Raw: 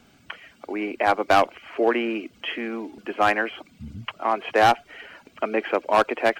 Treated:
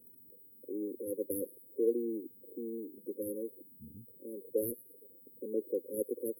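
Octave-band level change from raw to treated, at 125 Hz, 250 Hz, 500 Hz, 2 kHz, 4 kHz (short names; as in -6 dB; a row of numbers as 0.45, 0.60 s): -15.5 dB, -9.5 dB, -11.5 dB, under -40 dB, under -40 dB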